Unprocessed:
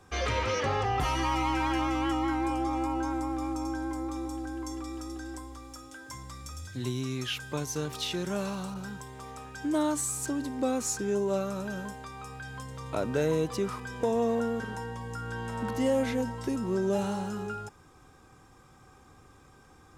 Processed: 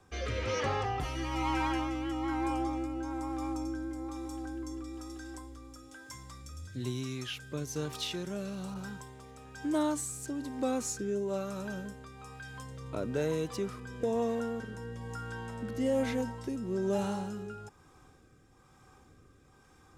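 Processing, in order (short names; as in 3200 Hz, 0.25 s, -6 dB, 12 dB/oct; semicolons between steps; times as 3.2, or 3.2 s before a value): rotary speaker horn 1.1 Hz; gain -2 dB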